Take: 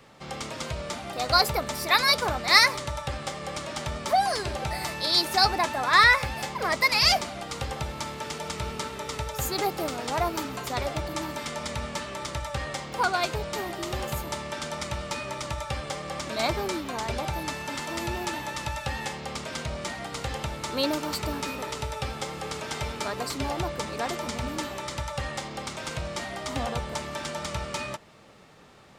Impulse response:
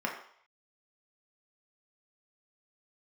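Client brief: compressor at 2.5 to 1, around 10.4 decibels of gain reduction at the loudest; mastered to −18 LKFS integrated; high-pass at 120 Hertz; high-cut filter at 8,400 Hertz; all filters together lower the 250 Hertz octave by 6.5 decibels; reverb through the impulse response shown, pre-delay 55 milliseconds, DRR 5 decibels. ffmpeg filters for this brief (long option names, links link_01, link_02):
-filter_complex "[0:a]highpass=120,lowpass=8400,equalizer=frequency=250:width_type=o:gain=-9,acompressor=threshold=-30dB:ratio=2.5,asplit=2[link_01][link_02];[1:a]atrim=start_sample=2205,adelay=55[link_03];[link_02][link_03]afir=irnorm=-1:irlink=0,volume=-12dB[link_04];[link_01][link_04]amix=inputs=2:normalize=0,volume=14.5dB"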